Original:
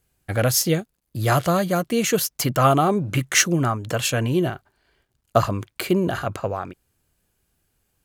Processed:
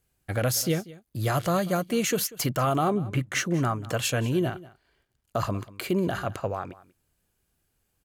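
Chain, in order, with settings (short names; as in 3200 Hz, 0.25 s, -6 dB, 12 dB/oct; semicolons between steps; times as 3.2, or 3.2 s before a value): 2.9–3.54 high shelf 3000 Hz -10.5 dB; limiter -11.5 dBFS, peak gain reduction 9 dB; on a send: echo 0.19 s -19.5 dB; on the sum: gain -4 dB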